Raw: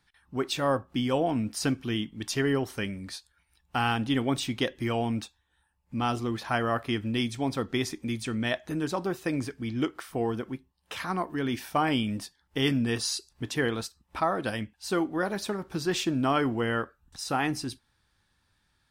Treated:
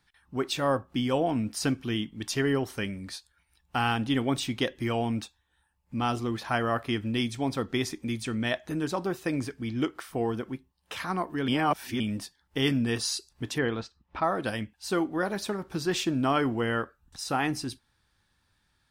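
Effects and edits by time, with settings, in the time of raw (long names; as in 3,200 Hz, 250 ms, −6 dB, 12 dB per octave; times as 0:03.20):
0:11.48–0:12.00: reverse
0:13.58–0:14.24: high-frequency loss of the air 170 metres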